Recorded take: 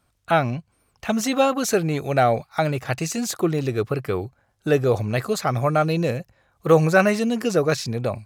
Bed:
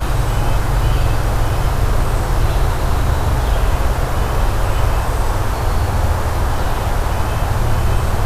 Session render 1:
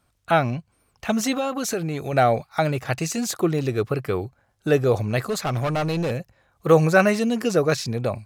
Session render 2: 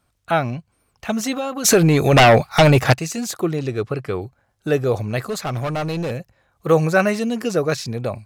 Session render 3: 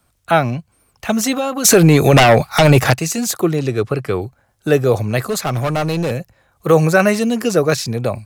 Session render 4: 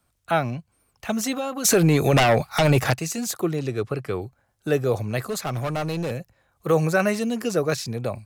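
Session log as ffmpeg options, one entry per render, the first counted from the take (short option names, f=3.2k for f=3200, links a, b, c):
-filter_complex "[0:a]asettb=1/sr,asplit=3[a][b][c];[a]atrim=end=1.324[d];[b]atrim=start=1.32:end=2.13,asetpts=PTS-STARTPTS,afade=t=in:d=0.004:c=qsin,afade=t=out:st=0.806:d=0.004:c=qsin,acompressor=threshold=-23dB:ratio=3:attack=3.2:release=140:knee=1:detection=peak[e];[c]atrim=start=2.126[f];[d][e]acrossfade=d=0.004:c1=hsin:c2=qsin[g];[g][f]acrossfade=d=0.004:c1=qsin:c2=hsin,asettb=1/sr,asplit=3[h][i][j];[h]atrim=end=5.204[k];[i]atrim=start=5.2:end=6.11,asetpts=PTS-STARTPTS,afade=t=in:d=0.004:c=qsin,afade=t=out:st=0.906:d=0.004:c=qsin,asoftclip=type=hard:threshold=-20.5dB[l];[j]atrim=start=6.106[m];[k][l]acrossfade=d=0.004:c1=hsin:c2=qsin[n];[n][m]acrossfade=d=0.004:c1=qsin:c2=hsin"
-filter_complex "[0:a]asplit=3[a][b][c];[a]afade=t=out:st=1.64:d=0.02[d];[b]aeval=exprs='0.473*sin(PI/2*3.16*val(0)/0.473)':c=same,afade=t=in:st=1.64:d=0.02,afade=t=out:st=2.92:d=0.02[e];[c]afade=t=in:st=2.92:d=0.02[f];[d][e][f]amix=inputs=3:normalize=0,asettb=1/sr,asplit=3[g][h][i];[g]atrim=end=3.554[j];[h]atrim=start=3.55:end=4.22,asetpts=PTS-STARTPTS,afade=t=in:d=0.004:c=qsin,afade=t=out:st=0.666:d=0.004:c=qsin,lowpass=9.3k[k];[i]atrim=start=4.216[l];[j][k]acrossfade=d=0.004:c1=hsin:c2=qsin[m];[m][l]acrossfade=d=0.004:c1=qsin:c2=hsin"
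-filter_complex "[0:a]acrossover=split=160|820|7300[a][b][c][d];[d]acontrast=30[e];[a][b][c][e]amix=inputs=4:normalize=0,alimiter=level_in=5dB:limit=-1dB:release=50:level=0:latency=1"
-af "volume=-8dB"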